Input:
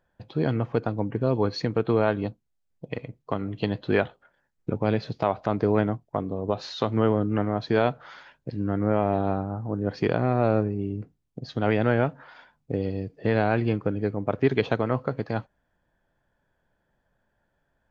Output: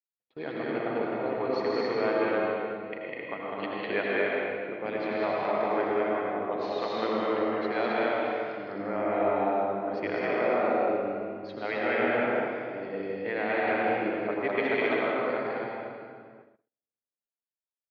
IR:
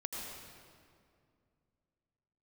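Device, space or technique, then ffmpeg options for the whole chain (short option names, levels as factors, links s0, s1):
station announcement: -filter_complex "[0:a]asettb=1/sr,asplit=3[s0][s1][s2];[s0]atrim=end=10.194[s3];[s1]atrim=start=10.19:end=10.7,asetpts=PTS-STARTPTS,afade=t=in:d=0.004:c=qsin,afade=t=out:st=0.506:d=0.004:c=qsin,highpass=210[s4];[s2]atrim=start=10.696[s5];[s3][s4]acrossfade=d=0.004:c1=hsin:c2=qsin[s6];[s6][s5]acrossfade=d=0.004:c1=qsin:c2=hsin,highpass=390,lowpass=3900,equalizer=f=2100:t=o:w=0.55:g=9,aecho=1:1:160.3|201.2|262.4:0.447|0.891|0.708[s7];[1:a]atrim=start_sample=2205[s8];[s7][s8]afir=irnorm=-1:irlink=0,agate=range=0.00891:threshold=0.00447:ratio=16:detection=peak,volume=0.562"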